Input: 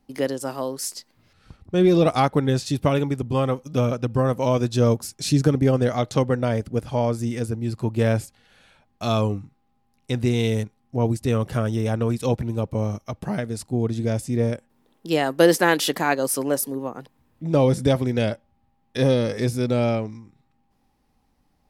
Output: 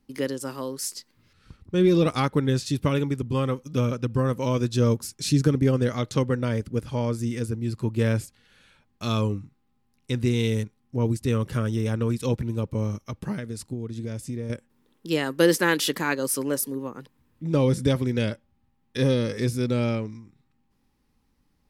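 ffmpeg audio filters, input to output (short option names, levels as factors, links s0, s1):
-filter_complex "[0:a]equalizer=f=710:w=3:g=-13,asettb=1/sr,asplit=3[s0][s1][s2];[s0]atrim=end=13.324[s3];[s1]atrim=start=13.32:end=14.5,asetpts=PTS-STARTPTS,afade=t=in:d=0.004:c=qsin,afade=t=out:st=1.176:d=0.004:c=qsin,acompressor=threshold=0.0447:ratio=10[s4];[s2]atrim=start=14.496[s5];[s3][s4]acrossfade=d=0.004:c1=hsin:c2=qsin[s6];[s6][s5]acrossfade=d=0.004:c1=qsin:c2=hsin,volume=0.841"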